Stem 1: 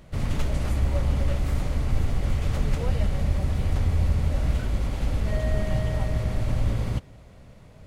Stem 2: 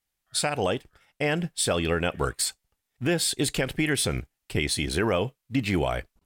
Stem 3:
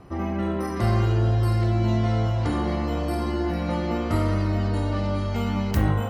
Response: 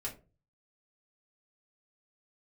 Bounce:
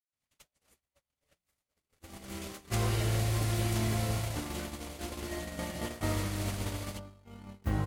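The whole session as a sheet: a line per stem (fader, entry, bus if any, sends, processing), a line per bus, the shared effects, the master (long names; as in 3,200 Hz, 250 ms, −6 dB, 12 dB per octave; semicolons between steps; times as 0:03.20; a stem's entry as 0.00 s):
0.0 dB, 0.00 s, no send, spectral tilt +4.5 dB per octave; downward compressor 2 to 1, threshold −37 dBFS, peak gain reduction 6 dB
−19.5 dB, 0.00 s, no send, de-essing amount 100%
−9.5 dB, 1.90 s, no send, no processing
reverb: not used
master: noise gate −31 dBFS, range −57 dB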